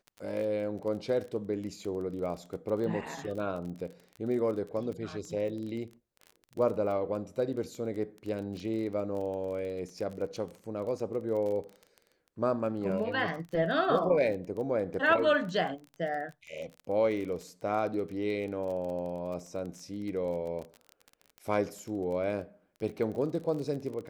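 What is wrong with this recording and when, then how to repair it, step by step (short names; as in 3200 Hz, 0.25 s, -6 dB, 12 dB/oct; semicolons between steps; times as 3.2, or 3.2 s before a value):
crackle 24/s -37 dBFS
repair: de-click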